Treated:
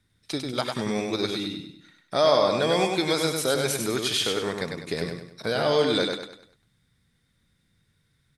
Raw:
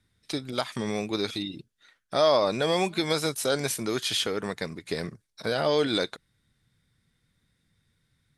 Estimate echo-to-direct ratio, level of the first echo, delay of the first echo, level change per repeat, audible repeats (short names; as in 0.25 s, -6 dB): -4.0 dB, -4.5 dB, 99 ms, -8.0 dB, 4